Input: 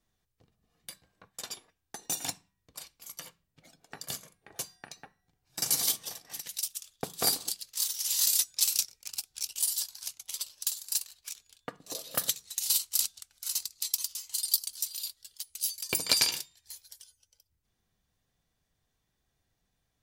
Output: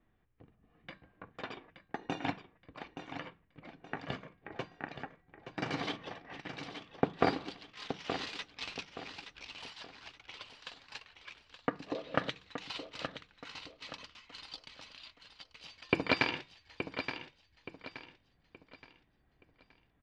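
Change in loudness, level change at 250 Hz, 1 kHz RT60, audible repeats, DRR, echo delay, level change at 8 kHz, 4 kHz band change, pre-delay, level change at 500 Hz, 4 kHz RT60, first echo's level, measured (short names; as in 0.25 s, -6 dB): -9.5 dB, +10.5 dB, none, 3, none, 0.873 s, -31.0 dB, -10.5 dB, none, +7.5 dB, none, -9.0 dB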